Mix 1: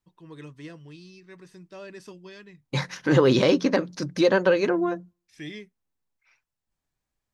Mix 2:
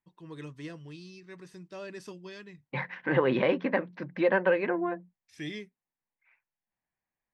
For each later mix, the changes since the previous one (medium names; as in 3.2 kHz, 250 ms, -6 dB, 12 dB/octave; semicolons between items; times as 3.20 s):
second voice: add cabinet simulation 230–2400 Hz, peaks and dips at 290 Hz -8 dB, 420 Hz -7 dB, 600 Hz -3 dB, 1.3 kHz -7 dB, 1.9 kHz +3 dB; reverb: off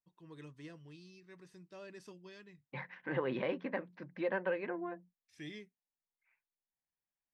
first voice -9.0 dB; second voice -10.5 dB